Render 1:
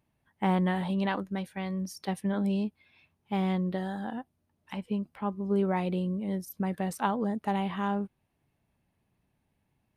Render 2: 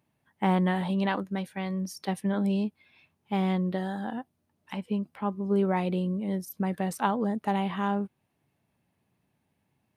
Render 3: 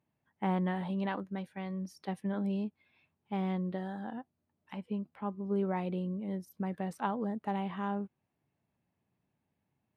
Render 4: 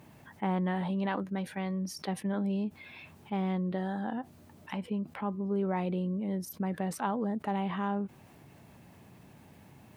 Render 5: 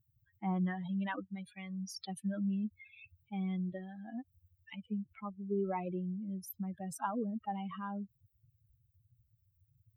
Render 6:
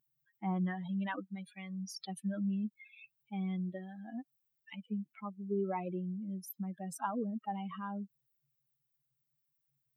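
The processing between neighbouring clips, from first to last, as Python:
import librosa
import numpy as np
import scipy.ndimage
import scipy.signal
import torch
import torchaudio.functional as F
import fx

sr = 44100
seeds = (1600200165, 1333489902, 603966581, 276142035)

y1 = scipy.signal.sosfilt(scipy.signal.butter(2, 100.0, 'highpass', fs=sr, output='sos'), x)
y1 = y1 * 10.0 ** (2.0 / 20.0)
y2 = fx.high_shelf(y1, sr, hz=4200.0, db=-11.0)
y2 = y2 * 10.0 ** (-6.5 / 20.0)
y3 = fx.env_flatten(y2, sr, amount_pct=50)
y4 = fx.bin_expand(y3, sr, power=3.0)
y4 = y4 * 10.0 ** (1.0 / 20.0)
y5 = fx.brickwall_highpass(y4, sr, low_hz=150.0)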